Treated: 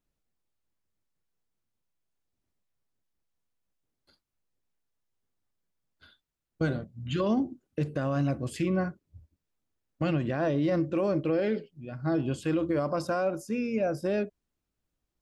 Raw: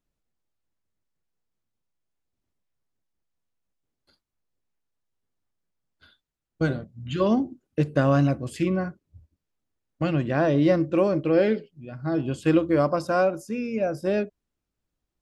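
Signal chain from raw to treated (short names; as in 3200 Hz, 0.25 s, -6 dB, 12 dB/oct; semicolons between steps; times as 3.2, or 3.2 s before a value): limiter -18.5 dBFS, peak gain reduction 10.5 dB; gain -1 dB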